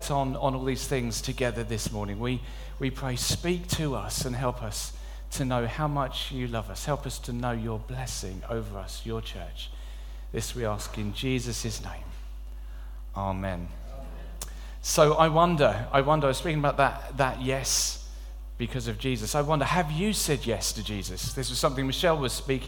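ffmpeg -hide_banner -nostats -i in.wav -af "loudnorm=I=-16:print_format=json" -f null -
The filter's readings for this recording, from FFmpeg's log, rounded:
"input_i" : "-28.2",
"input_tp" : "-4.5",
"input_lra" : "9.7",
"input_thresh" : "-38.7",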